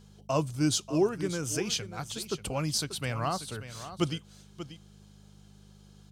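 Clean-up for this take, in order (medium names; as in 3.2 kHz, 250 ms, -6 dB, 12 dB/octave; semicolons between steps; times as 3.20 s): de-hum 50.6 Hz, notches 4; inverse comb 587 ms -12.5 dB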